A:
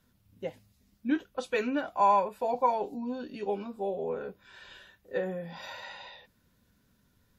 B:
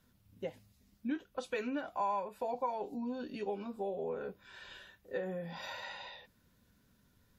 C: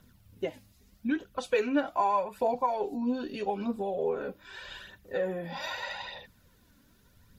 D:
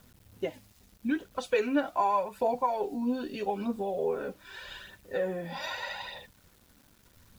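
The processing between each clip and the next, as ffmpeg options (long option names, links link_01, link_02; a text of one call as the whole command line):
ffmpeg -i in.wav -af "acompressor=threshold=-35dB:ratio=2.5,volume=-1dB" out.wav
ffmpeg -i in.wav -af "aphaser=in_gain=1:out_gain=1:delay=3.8:decay=0.48:speed=0.81:type=triangular,volume=6.5dB" out.wav
ffmpeg -i in.wav -af "acrusher=bits=9:mix=0:aa=0.000001" out.wav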